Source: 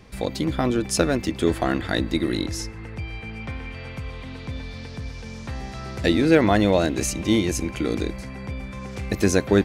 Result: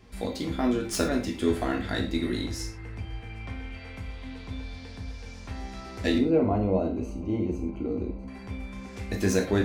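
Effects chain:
stylus tracing distortion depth 0.023 ms
0:06.18–0:08.28: moving average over 25 samples
reverb whose tail is shaped and stops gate 140 ms falling, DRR 0.5 dB
level −8 dB

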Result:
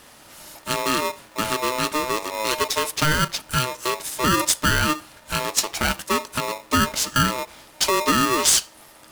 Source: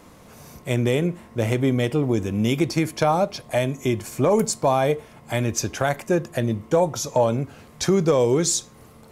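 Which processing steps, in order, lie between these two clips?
graphic EQ with 15 bands 100 Hz −7 dB, 250 Hz −7 dB, 4,000 Hz +10 dB, 10,000 Hz +10 dB
ring modulator with a square carrier 760 Hz

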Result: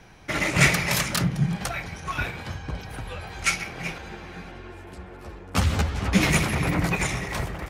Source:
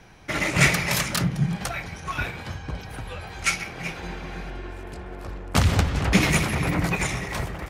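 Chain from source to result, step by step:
0:03.98–0:06.21: string-ensemble chorus

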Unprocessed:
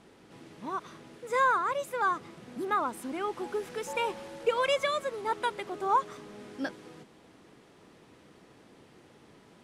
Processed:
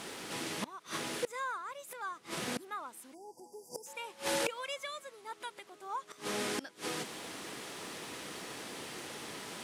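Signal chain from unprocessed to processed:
time-frequency box erased 0:03.14–0:03.86, 1,000–4,600 Hz
gate with flip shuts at −34 dBFS, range −27 dB
spectral tilt +3 dB per octave
level +13.5 dB

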